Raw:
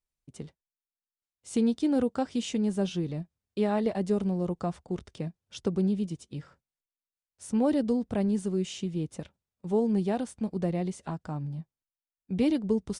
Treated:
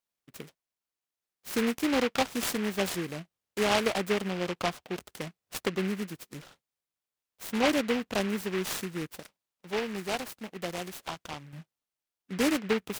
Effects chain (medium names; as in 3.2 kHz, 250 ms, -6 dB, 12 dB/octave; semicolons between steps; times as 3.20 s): high-pass 650 Hz 6 dB/octave, from 9.07 s 1.4 kHz, from 11.53 s 620 Hz; dynamic bell 1.6 kHz, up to +5 dB, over -52 dBFS, Q 0.76; delay time shaken by noise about 1.8 kHz, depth 0.15 ms; trim +5 dB